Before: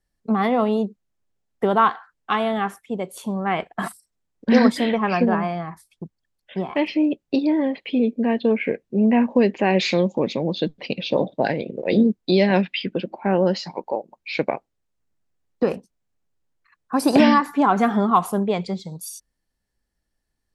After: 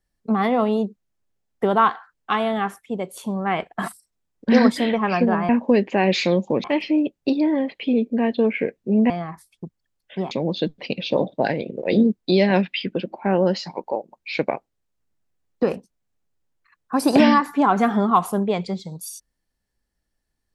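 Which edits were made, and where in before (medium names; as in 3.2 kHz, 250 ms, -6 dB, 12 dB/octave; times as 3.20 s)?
5.49–6.70 s: swap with 9.16–10.31 s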